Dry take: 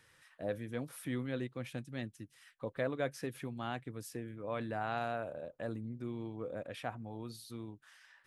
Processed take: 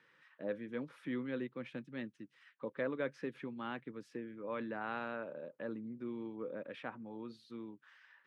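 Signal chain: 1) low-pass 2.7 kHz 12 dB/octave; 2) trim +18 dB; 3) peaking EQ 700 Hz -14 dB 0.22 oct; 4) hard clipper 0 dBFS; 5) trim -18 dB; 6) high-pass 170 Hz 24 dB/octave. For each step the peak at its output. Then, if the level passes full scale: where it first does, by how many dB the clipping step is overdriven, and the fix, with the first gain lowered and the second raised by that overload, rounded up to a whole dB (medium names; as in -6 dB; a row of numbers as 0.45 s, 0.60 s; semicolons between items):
-22.0 dBFS, -4.0 dBFS, -5.5 dBFS, -5.5 dBFS, -23.5 dBFS, -23.5 dBFS; nothing clips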